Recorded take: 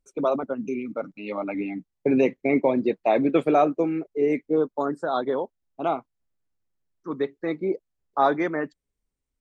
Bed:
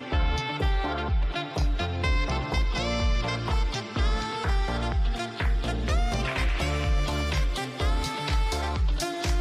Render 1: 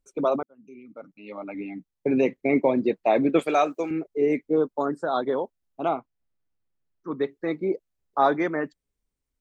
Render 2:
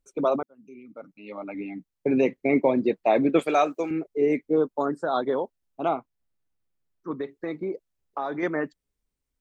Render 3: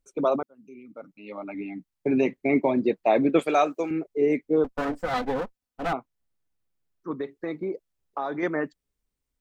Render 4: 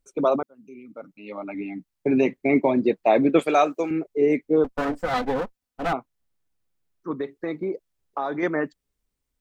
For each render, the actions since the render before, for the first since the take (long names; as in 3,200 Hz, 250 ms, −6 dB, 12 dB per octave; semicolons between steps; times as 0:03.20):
0:00.43–0:02.56: fade in; 0:03.39–0:03.91: spectral tilt +4 dB per octave; 0:05.89–0:07.22: high-frequency loss of the air 130 metres
0:07.11–0:08.43: downward compressor 5 to 1, threshold −26 dBFS
0:01.40–0:02.76: notch filter 500 Hz, Q 5.4; 0:04.64–0:05.93: lower of the sound and its delayed copy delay 4 ms
level +2.5 dB